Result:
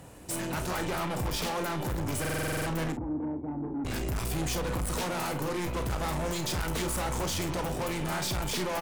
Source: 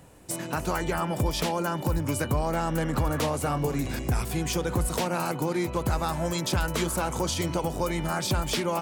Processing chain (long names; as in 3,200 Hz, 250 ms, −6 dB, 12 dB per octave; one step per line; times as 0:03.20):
harmonic generator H 8 −20 dB, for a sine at −16 dBFS
0:02.92–0:03.85: formant resonators in series u
soft clipping −32.5 dBFS, distortion −6 dB
ambience of single reflections 33 ms −11 dB, 49 ms −12 dB
buffer that repeats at 0:02.20, samples 2,048, times 9
level +3 dB